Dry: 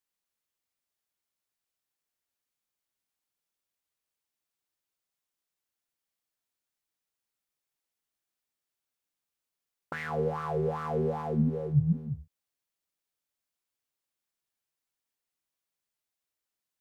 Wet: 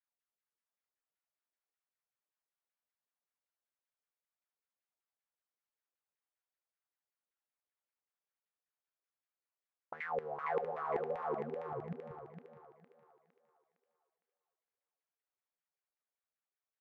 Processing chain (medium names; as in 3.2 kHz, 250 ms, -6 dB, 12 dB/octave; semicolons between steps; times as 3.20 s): LFO band-pass saw down 5.2 Hz 420–2100 Hz; wow and flutter 100 cents; thinning echo 459 ms, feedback 41%, high-pass 300 Hz, level -3.5 dB; trim -1.5 dB